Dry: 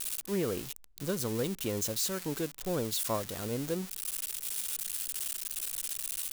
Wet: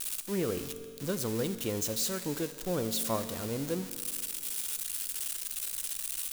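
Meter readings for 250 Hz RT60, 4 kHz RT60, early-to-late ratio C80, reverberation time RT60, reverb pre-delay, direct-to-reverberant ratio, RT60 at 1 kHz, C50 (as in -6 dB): 2.2 s, 2.2 s, 12.0 dB, 2.2 s, 4 ms, 10.0 dB, 2.2 s, 11.5 dB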